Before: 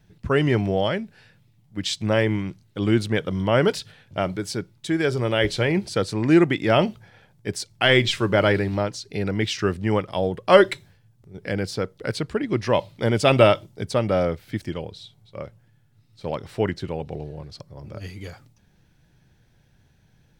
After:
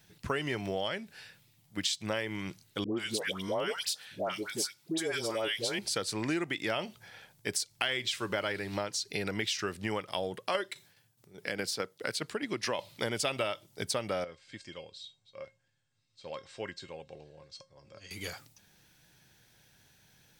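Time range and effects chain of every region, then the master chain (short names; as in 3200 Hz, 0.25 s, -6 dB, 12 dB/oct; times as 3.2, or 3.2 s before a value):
2.84–5.79 HPF 290 Hz 6 dB/oct + dispersion highs, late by 0.134 s, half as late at 1000 Hz + dynamic EQ 1800 Hz, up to -5 dB, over -40 dBFS, Q 1
10.34–12.79 HPF 120 Hz + tremolo saw down 4.8 Hz, depth 60%
14.24–18.11 elliptic low-pass 8100 Hz, stop band 50 dB + resonator 540 Hz, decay 0.19 s, mix 80%
whole clip: tilt +3 dB/oct; compressor 6:1, threshold -30 dBFS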